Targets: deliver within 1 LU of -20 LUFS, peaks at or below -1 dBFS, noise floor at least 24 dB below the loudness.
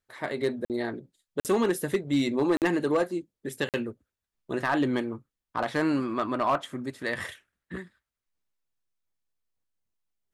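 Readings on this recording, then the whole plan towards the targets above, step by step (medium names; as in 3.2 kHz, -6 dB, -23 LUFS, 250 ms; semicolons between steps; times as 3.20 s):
clipped samples 0.4%; clipping level -17.5 dBFS; dropouts 4; longest dropout 48 ms; loudness -29.0 LUFS; peak level -17.5 dBFS; loudness target -20.0 LUFS
-> clip repair -17.5 dBFS; interpolate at 0.65/1.40/2.57/3.69 s, 48 ms; trim +9 dB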